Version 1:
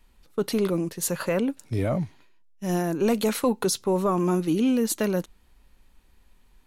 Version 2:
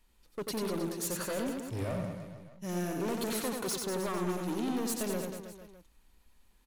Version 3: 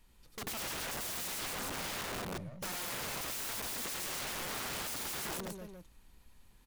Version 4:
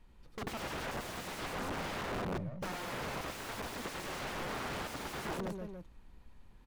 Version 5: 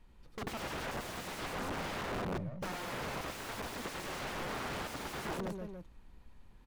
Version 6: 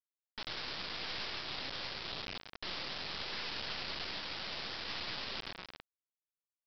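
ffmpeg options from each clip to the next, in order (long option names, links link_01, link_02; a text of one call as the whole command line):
ffmpeg -i in.wav -af "bass=frequency=250:gain=-2,treble=frequency=4000:gain=4,volume=25dB,asoftclip=hard,volume=-25dB,aecho=1:1:90|193.5|312.5|449.4|606.8:0.631|0.398|0.251|0.158|0.1,volume=-7.5dB" out.wav
ffmpeg -i in.wav -af "equalizer=frequency=120:width_type=o:width=0.85:gain=9.5,aeval=exprs='(mod(75*val(0)+1,2)-1)/75':channel_layout=same,volume=3dB" out.wav
ffmpeg -i in.wav -af "lowpass=frequency=1400:poles=1,volume=4.5dB" out.wav
ffmpeg -i in.wav -af anull out.wav
ffmpeg -i in.wav -af "agate=range=-33dB:threshold=-44dB:ratio=3:detection=peak,afftfilt=real='re*lt(hypot(re,im),0.00708)':imag='im*lt(hypot(re,im),0.00708)':win_size=1024:overlap=0.75,aresample=11025,acrusher=bits=6:dc=4:mix=0:aa=0.000001,aresample=44100,volume=16.5dB" out.wav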